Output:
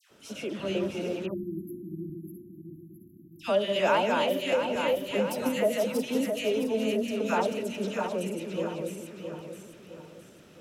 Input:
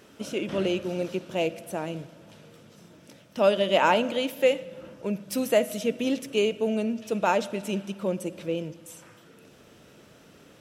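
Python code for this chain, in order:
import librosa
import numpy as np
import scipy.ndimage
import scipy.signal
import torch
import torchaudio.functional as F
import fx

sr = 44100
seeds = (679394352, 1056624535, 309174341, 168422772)

y = fx.reverse_delay_fb(x, sr, ms=332, feedback_pct=63, wet_db=-3)
y = fx.brickwall_bandstop(y, sr, low_hz=370.0, high_hz=11000.0, at=(1.25, 3.39))
y = fx.dispersion(y, sr, late='lows', ms=108.0, hz=1400.0)
y = fx.band_squash(y, sr, depth_pct=100, at=(4.52, 5.49))
y = y * librosa.db_to_amplitude(-4.5)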